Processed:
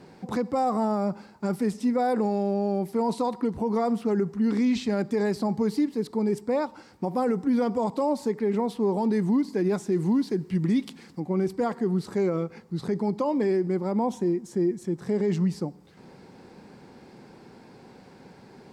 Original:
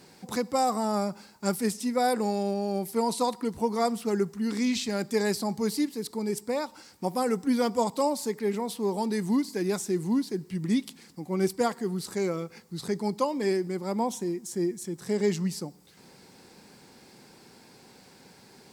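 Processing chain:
low-pass filter 1,100 Hz 6 dB per octave, from 0:09.92 2,100 Hz, from 0:11.20 1,100 Hz
brickwall limiter −23.5 dBFS, peak gain reduction 8.5 dB
level +6.5 dB

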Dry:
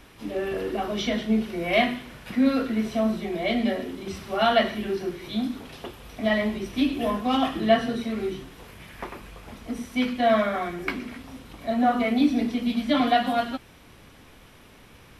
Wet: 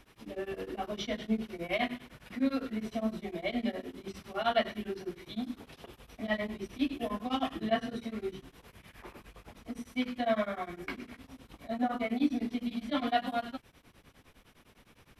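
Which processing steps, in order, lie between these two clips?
tremolo along a rectified sine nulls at 9.8 Hz
level −6.5 dB

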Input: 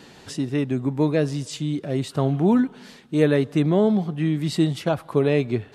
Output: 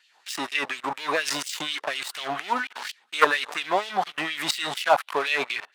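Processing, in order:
output level in coarse steps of 15 dB
leveller curve on the samples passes 3
auto-filter high-pass sine 4.2 Hz 810–2,900 Hz
level +4.5 dB

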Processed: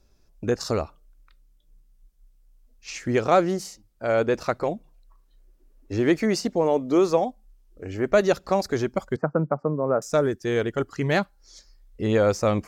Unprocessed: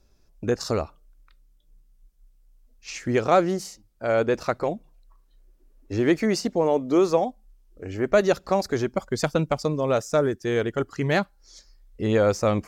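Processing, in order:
0:09.16–0:10.02: elliptic band-pass filter 140–1,400 Hz, stop band 40 dB

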